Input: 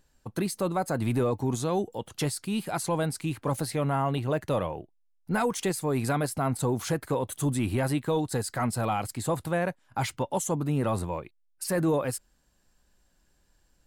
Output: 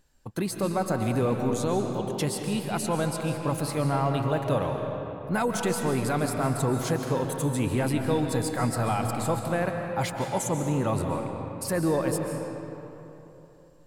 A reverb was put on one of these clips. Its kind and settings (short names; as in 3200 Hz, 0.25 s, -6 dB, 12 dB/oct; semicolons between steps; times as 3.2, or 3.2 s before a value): digital reverb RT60 3.3 s, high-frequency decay 0.6×, pre-delay 0.1 s, DRR 3.5 dB